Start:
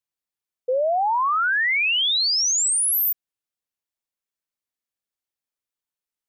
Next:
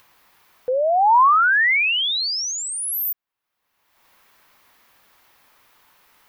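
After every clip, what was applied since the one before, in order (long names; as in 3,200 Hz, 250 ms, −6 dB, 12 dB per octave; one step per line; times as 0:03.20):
graphic EQ with 10 bands 1,000 Hz +9 dB, 2,000 Hz +4 dB, 8,000 Hz −9 dB
in parallel at −1 dB: upward compression, threshold −18 dBFS
on the sum: level −7 dB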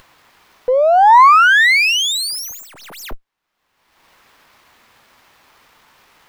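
windowed peak hold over 5 samples
level +7 dB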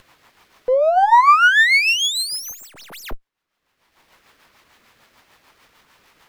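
rotating-speaker cabinet horn 6.7 Hz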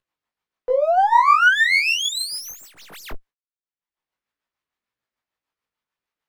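noise gate −44 dBFS, range −30 dB
chorus effect 1.8 Hz, delay 16.5 ms, depth 5.3 ms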